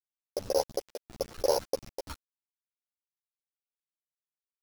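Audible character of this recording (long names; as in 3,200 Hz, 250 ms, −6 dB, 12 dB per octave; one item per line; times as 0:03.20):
a buzz of ramps at a fixed pitch in blocks of 8 samples
chopped level 2.9 Hz, depth 65%, duty 75%
a quantiser's noise floor 6 bits, dither none
a shimmering, thickened sound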